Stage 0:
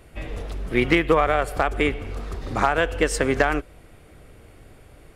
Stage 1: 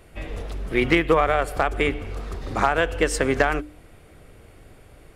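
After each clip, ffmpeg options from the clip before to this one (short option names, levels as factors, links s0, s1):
-af "bandreject=f=60:t=h:w=6,bandreject=f=120:t=h:w=6,bandreject=f=180:t=h:w=6,bandreject=f=240:t=h:w=6,bandreject=f=300:t=h:w=6"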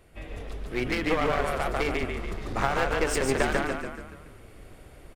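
-filter_complex "[0:a]asplit=7[s0][s1][s2][s3][s4][s5][s6];[s1]adelay=143,afreqshift=-30,volume=0.668[s7];[s2]adelay=286,afreqshift=-60,volume=0.327[s8];[s3]adelay=429,afreqshift=-90,volume=0.16[s9];[s4]adelay=572,afreqshift=-120,volume=0.0785[s10];[s5]adelay=715,afreqshift=-150,volume=0.0385[s11];[s6]adelay=858,afreqshift=-180,volume=0.0188[s12];[s0][s7][s8][s9][s10][s11][s12]amix=inputs=7:normalize=0,dynaudnorm=f=230:g=11:m=3.76,aeval=exprs='clip(val(0),-1,0.0944)':c=same,volume=0.447"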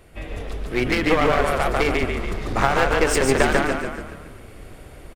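-af "aecho=1:1:134|268|402|536|670:0.126|0.0743|0.0438|0.0259|0.0153,volume=2.24"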